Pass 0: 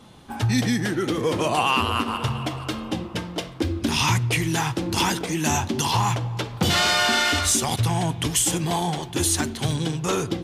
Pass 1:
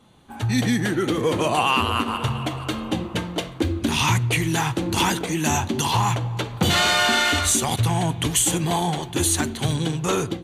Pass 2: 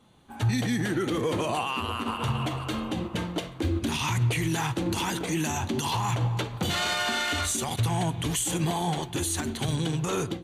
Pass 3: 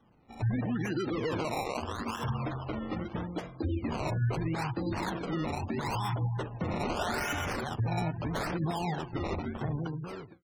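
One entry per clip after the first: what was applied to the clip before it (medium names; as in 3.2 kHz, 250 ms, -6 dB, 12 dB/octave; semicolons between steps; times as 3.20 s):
band-stop 5.2 kHz, Q 5.2; level rider gain up to 12 dB; trim -7 dB
peak limiter -19 dBFS, peak gain reduction 10.5 dB; upward expansion 1.5:1, over -36 dBFS; trim +2 dB
fade out at the end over 0.75 s; decimation with a swept rate 19×, swing 100% 0.78 Hz; spectral gate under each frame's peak -25 dB strong; trim -4.5 dB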